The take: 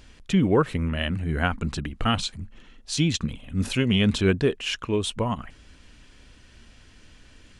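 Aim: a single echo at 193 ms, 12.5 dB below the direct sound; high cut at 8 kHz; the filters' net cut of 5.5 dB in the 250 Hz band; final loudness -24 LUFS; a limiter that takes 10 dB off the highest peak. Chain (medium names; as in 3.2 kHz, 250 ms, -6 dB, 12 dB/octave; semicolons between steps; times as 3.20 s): low-pass 8 kHz; peaking EQ 250 Hz -8 dB; peak limiter -19 dBFS; delay 193 ms -12.5 dB; trim +6.5 dB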